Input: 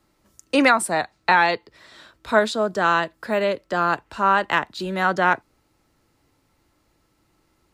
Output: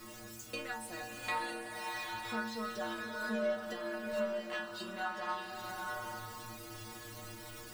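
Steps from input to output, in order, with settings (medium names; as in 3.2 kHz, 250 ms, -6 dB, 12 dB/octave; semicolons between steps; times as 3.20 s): jump at every zero crossing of -31 dBFS; compression 6:1, threshold -29 dBFS, peak gain reduction 17 dB; power-law waveshaper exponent 1.4; Butterworth band-stop 820 Hz, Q 7.3; inharmonic resonator 110 Hz, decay 0.68 s, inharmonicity 0.008; swelling reverb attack 820 ms, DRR 1.5 dB; trim +11 dB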